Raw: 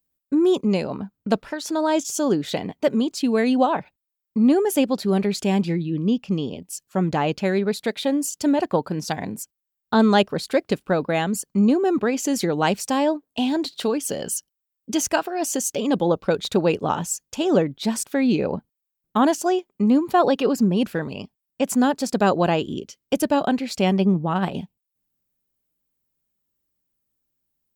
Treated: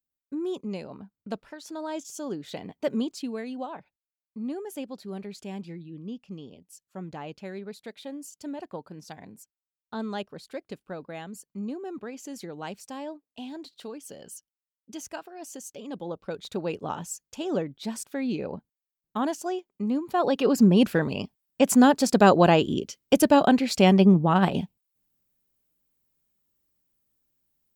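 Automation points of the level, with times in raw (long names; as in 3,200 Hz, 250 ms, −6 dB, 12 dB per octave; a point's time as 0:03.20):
0:02.40 −13 dB
0:03.01 −6 dB
0:03.47 −16.5 dB
0:15.86 −16.5 dB
0:16.86 −9.5 dB
0:20.06 −9.5 dB
0:20.67 +2 dB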